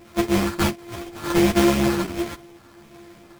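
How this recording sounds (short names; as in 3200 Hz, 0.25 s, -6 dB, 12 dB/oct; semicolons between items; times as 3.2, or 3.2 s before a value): a buzz of ramps at a fixed pitch in blocks of 128 samples; phasing stages 8, 1.4 Hz, lowest notch 790–2800 Hz; aliases and images of a low sample rate 2800 Hz, jitter 20%; a shimmering, thickened sound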